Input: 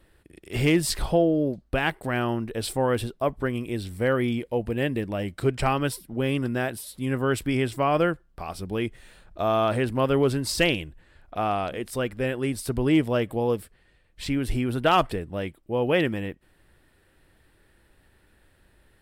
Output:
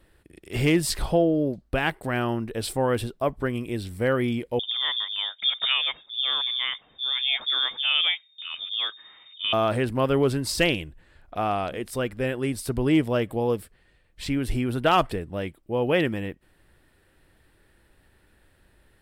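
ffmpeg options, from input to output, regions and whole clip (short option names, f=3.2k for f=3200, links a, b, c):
-filter_complex "[0:a]asettb=1/sr,asplit=3[a][b][c];[a]atrim=end=4.594[d];[b]atrim=start=4.59:end=9.53,asetpts=PTS-STARTPTS,afade=t=in:d=0.004:c=qsin,afade=t=out:st=4.936:d=0.004:c=qsin,acrossover=split=490[e][f];[f]adelay=40[g];[e][g]amix=inputs=2:normalize=0,atrim=end_sample=217854,lowpass=f=3.1k:t=q:w=0.5098,lowpass=f=3.1k:t=q:w=0.6013,lowpass=f=3.1k:t=q:w=0.9,lowpass=f=3.1k:t=q:w=2.563,afreqshift=-3700[h];[c]atrim=start=9.526[i];[d][h]acrossfade=d=0.004:c1=hsin:c2=qsin[j];[j][i]acrossfade=d=0.004:c1=qsin:c2=hsin"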